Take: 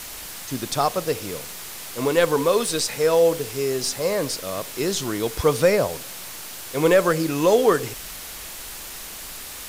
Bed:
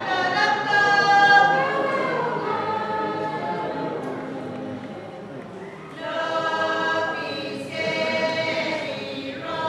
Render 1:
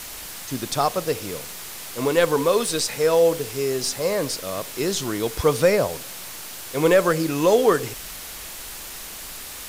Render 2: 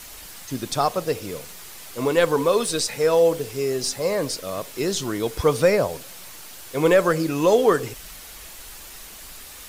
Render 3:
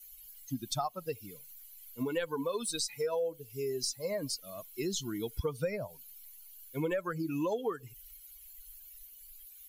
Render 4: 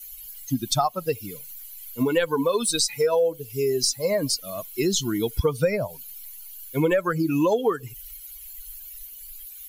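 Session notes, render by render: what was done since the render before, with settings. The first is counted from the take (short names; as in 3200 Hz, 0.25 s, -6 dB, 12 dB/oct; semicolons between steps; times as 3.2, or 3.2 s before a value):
nothing audible
denoiser 6 dB, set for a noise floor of -37 dBFS
per-bin expansion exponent 2; compressor 6:1, threshold -31 dBFS, peak gain reduction 16 dB
gain +11.5 dB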